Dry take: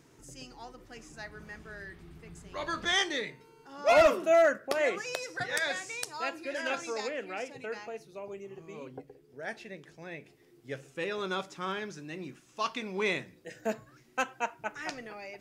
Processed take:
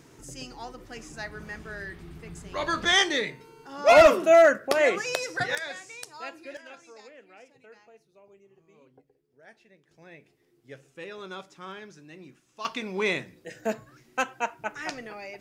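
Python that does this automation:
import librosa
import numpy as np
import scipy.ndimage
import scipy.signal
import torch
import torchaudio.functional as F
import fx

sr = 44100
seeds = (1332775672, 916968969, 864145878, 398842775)

y = fx.gain(x, sr, db=fx.steps((0.0, 6.5), (5.55, -4.5), (6.57, -14.0), (9.91, -6.0), (12.65, 3.5)))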